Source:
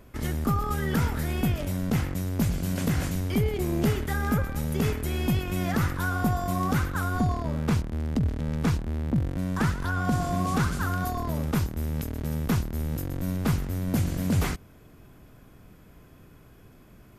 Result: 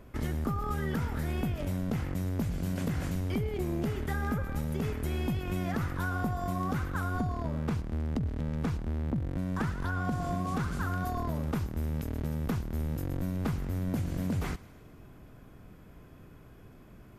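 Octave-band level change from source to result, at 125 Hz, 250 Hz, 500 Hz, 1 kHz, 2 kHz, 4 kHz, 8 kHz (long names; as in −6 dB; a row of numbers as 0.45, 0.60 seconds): −5.5, −5.5, −5.0, −5.5, −6.0, −8.5, −10.5 decibels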